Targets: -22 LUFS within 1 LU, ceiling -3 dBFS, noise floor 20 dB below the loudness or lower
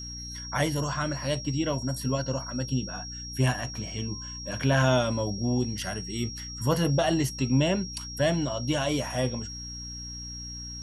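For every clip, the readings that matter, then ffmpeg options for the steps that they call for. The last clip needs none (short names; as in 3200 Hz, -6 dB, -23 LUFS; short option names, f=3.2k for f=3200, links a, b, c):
hum 60 Hz; harmonics up to 300 Hz; hum level -40 dBFS; steady tone 5600 Hz; tone level -38 dBFS; loudness -28.5 LUFS; peak -11.0 dBFS; loudness target -22.0 LUFS
-> -af "bandreject=f=60:t=h:w=6,bandreject=f=120:t=h:w=6,bandreject=f=180:t=h:w=6,bandreject=f=240:t=h:w=6,bandreject=f=300:t=h:w=6"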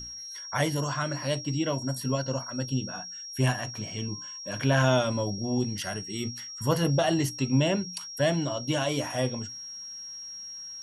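hum none; steady tone 5600 Hz; tone level -38 dBFS
-> -af "bandreject=f=5.6k:w=30"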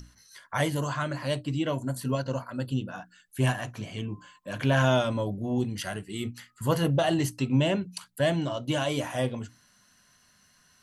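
steady tone none; loudness -29.0 LUFS; peak -10.5 dBFS; loudness target -22.0 LUFS
-> -af "volume=7dB"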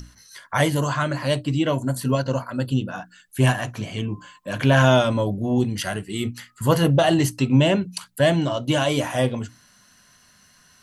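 loudness -22.0 LUFS; peak -3.5 dBFS; noise floor -56 dBFS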